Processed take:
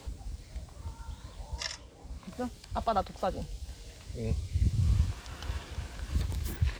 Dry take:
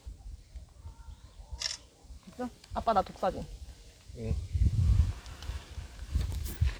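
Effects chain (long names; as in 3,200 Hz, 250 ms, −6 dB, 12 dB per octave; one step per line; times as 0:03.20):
multiband upward and downward compressor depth 40%
level +1.5 dB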